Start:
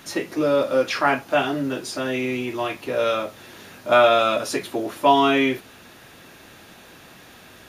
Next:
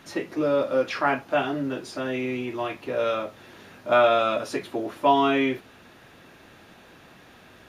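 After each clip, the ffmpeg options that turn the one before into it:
-af "highshelf=f=4700:g=-10.5,volume=0.708"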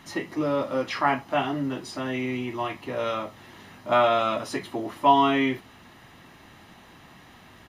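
-af "aecho=1:1:1:0.45"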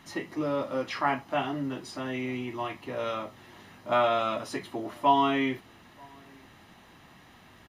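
-filter_complex "[0:a]asplit=2[s0][s1];[s1]adelay=932.9,volume=0.0398,highshelf=f=4000:g=-21[s2];[s0][s2]amix=inputs=2:normalize=0,volume=0.631"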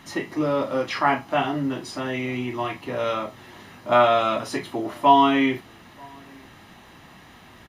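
-filter_complex "[0:a]asplit=2[s0][s1];[s1]adelay=33,volume=0.299[s2];[s0][s2]amix=inputs=2:normalize=0,volume=2"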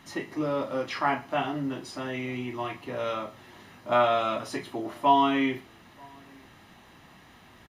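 -af "aecho=1:1:117:0.075,volume=0.531"

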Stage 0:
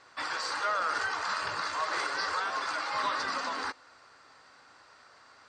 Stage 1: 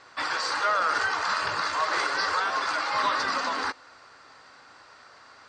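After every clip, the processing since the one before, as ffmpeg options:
-af "lowpass=8200,volume=1.88"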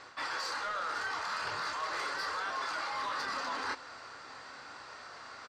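-filter_complex "[0:a]asoftclip=type=tanh:threshold=0.0841,asplit=2[s0][s1];[s1]adelay=28,volume=0.447[s2];[s0][s2]amix=inputs=2:normalize=0,areverse,acompressor=threshold=0.0141:ratio=6,areverse,volume=1.33"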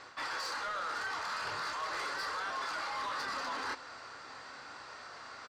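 -af "asoftclip=type=tanh:threshold=0.0316"

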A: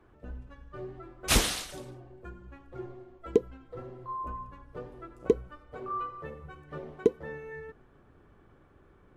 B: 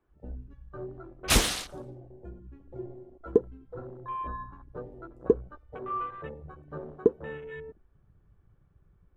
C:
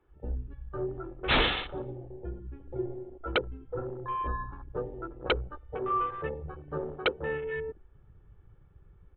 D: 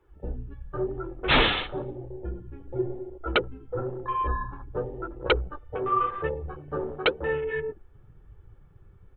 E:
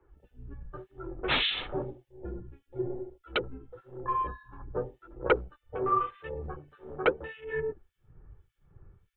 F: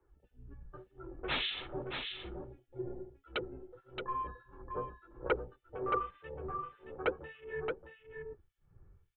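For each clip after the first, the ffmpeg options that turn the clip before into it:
-af "afwtdn=0.00562,volume=1.19"
-af "aecho=1:1:2.3:0.36,aresample=8000,aeval=exprs='0.0794*(abs(mod(val(0)/0.0794+3,4)-2)-1)':c=same,aresample=44100,volume=1.68"
-af "flanger=delay=2:depth=7.9:regen=-35:speed=0.95:shape=sinusoidal,volume=2.51"
-filter_complex "[0:a]acrossover=split=2300[s0][s1];[s0]aeval=exprs='val(0)*(1-1/2+1/2*cos(2*PI*1.7*n/s))':c=same[s2];[s1]aeval=exprs='val(0)*(1-1/2-1/2*cos(2*PI*1.7*n/s))':c=same[s3];[s2][s3]amix=inputs=2:normalize=0,acrossover=split=140[s4][s5];[s4]asoftclip=type=hard:threshold=0.0119[s6];[s6][s5]amix=inputs=2:normalize=0"
-af "aecho=1:1:623:0.501,volume=0.422"

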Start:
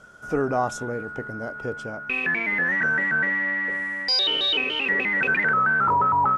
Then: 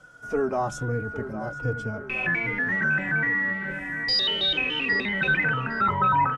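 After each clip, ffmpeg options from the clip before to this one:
-filter_complex "[0:a]acrossover=split=180[s0][s1];[s0]dynaudnorm=f=340:g=3:m=3.55[s2];[s2][s1]amix=inputs=2:normalize=0,asplit=2[s3][s4];[s4]adelay=809,lowpass=f=2400:p=1,volume=0.282,asplit=2[s5][s6];[s6]adelay=809,lowpass=f=2400:p=1,volume=0.55,asplit=2[s7][s8];[s8]adelay=809,lowpass=f=2400:p=1,volume=0.55,asplit=2[s9][s10];[s10]adelay=809,lowpass=f=2400:p=1,volume=0.55,asplit=2[s11][s12];[s12]adelay=809,lowpass=f=2400:p=1,volume=0.55,asplit=2[s13][s14];[s14]adelay=809,lowpass=f=2400:p=1,volume=0.55[s15];[s3][s5][s7][s9][s11][s13][s15]amix=inputs=7:normalize=0,asplit=2[s16][s17];[s17]adelay=3.5,afreqshift=-1.3[s18];[s16][s18]amix=inputs=2:normalize=1"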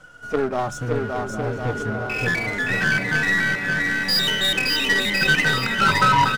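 -af "aeval=exprs='if(lt(val(0),0),0.447*val(0),val(0))':c=same,aeval=exprs='0.251*(cos(1*acos(clip(val(0)/0.251,-1,1)))-cos(1*PI/2))+0.0282*(cos(8*acos(clip(val(0)/0.251,-1,1)))-cos(8*PI/2))':c=same,aecho=1:1:570|1054|1466|1816|2114:0.631|0.398|0.251|0.158|0.1,volume=2.24"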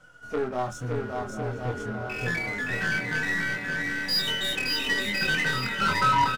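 -filter_complex "[0:a]asplit=2[s0][s1];[s1]adelay=24,volume=0.631[s2];[s0][s2]amix=inputs=2:normalize=0,volume=0.398"

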